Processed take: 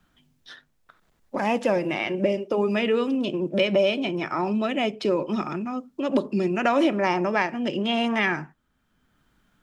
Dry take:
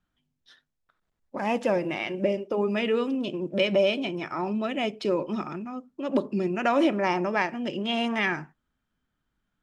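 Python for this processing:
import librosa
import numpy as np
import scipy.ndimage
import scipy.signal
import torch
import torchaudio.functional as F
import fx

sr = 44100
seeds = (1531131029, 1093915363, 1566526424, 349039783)

y = fx.band_squash(x, sr, depth_pct=40)
y = y * 10.0 ** (2.5 / 20.0)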